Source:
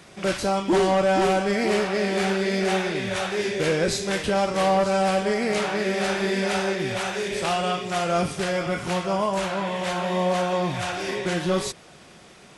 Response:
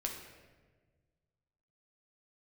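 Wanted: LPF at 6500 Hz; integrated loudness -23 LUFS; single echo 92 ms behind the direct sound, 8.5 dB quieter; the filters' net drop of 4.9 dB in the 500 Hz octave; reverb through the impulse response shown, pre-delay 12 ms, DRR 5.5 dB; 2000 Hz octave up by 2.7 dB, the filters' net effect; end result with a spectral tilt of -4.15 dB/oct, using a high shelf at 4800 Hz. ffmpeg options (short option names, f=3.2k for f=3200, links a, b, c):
-filter_complex "[0:a]lowpass=6.5k,equalizer=f=500:t=o:g=-6.5,equalizer=f=2k:t=o:g=3,highshelf=f=4.8k:g=4.5,aecho=1:1:92:0.376,asplit=2[a][b];[1:a]atrim=start_sample=2205,adelay=12[c];[b][c]afir=irnorm=-1:irlink=0,volume=-6.5dB[d];[a][d]amix=inputs=2:normalize=0"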